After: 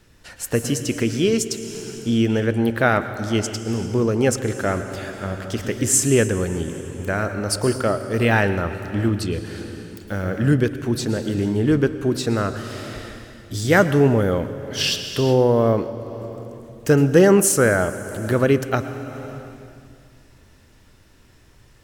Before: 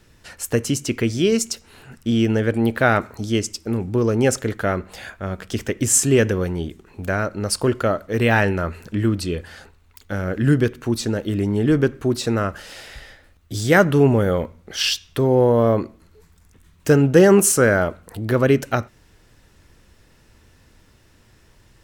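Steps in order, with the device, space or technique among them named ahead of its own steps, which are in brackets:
compressed reverb return (on a send at −3 dB: convolution reverb RT60 2.1 s, pre-delay 103 ms + downward compressor 6 to 1, threshold −23 dBFS, peak gain reduction 17 dB)
on the sum: level −1 dB

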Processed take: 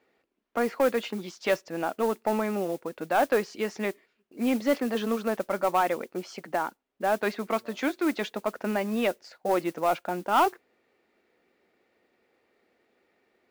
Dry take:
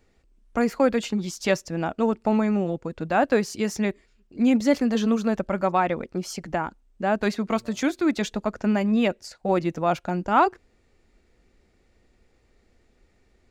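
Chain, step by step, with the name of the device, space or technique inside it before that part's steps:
carbon microphone (band-pass filter 340–3,300 Hz; soft clipping −14 dBFS, distortion −17 dB; noise that follows the level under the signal 21 dB)

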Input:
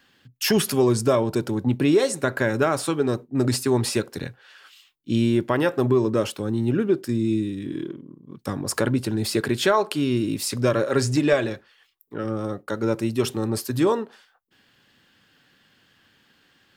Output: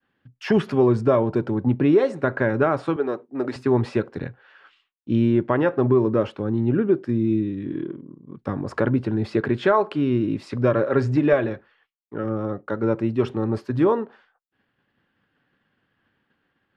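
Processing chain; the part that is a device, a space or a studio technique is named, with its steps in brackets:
hearing-loss simulation (low-pass filter 1,800 Hz 12 dB per octave; downward expander −56 dBFS)
0:02.96–0:03.56: high-pass filter 380 Hz 12 dB per octave
level +1.5 dB

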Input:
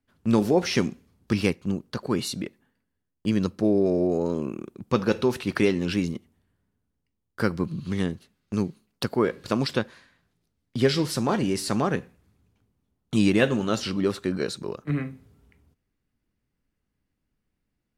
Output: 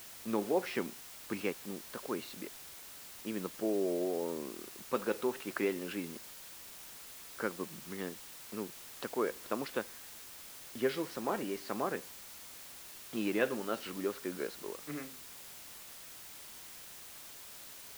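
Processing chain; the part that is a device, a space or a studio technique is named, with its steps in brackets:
wax cylinder (band-pass filter 340–2,500 Hz; tape wow and flutter; white noise bed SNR 11 dB)
level −8 dB

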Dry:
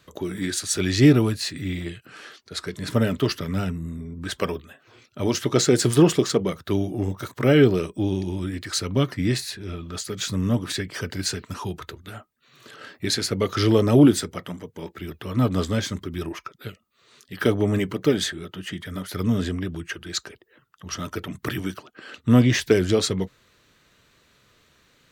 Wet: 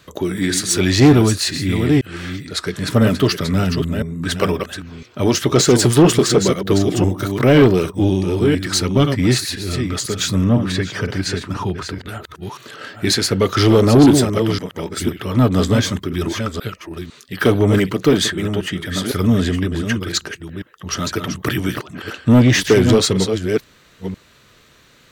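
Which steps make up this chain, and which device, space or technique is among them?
delay that plays each chunk backwards 503 ms, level −8 dB
0:10.44–0:12.09: low-pass filter 2,600 Hz 6 dB per octave
saturation between pre-emphasis and de-emphasis (high-shelf EQ 4,200 Hz +6.5 dB; soft clipping −13 dBFS, distortion −13 dB; high-shelf EQ 4,200 Hz −6.5 dB)
level +8.5 dB

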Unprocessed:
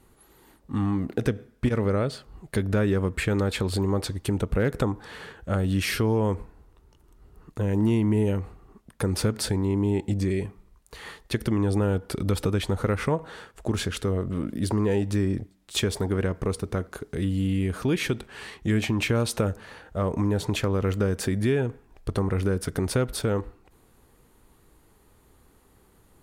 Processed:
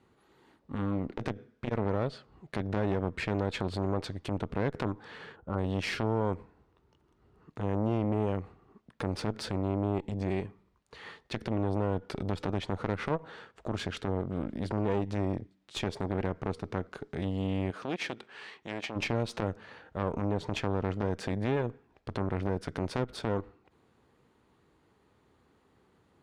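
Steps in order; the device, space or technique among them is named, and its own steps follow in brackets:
valve radio (band-pass filter 99–4,400 Hz; tube saturation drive 20 dB, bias 0.8; saturating transformer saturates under 430 Hz)
0:05.36–0:05.58: gain on a spectral selection 1,500–11,000 Hz −14 dB
0:17.70–0:18.95: high-pass filter 290 Hz → 690 Hz 6 dB per octave

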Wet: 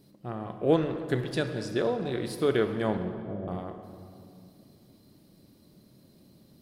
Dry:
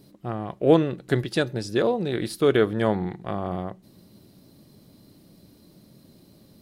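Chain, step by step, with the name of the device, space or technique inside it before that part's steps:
0:02.97–0:03.48: Butterworth low-pass 650 Hz 72 dB per octave
saturated reverb return (on a send at −5.5 dB: convolution reverb RT60 2.3 s, pre-delay 27 ms + soft clipping −19.5 dBFS, distortion −11 dB)
on the sum: level −6 dB

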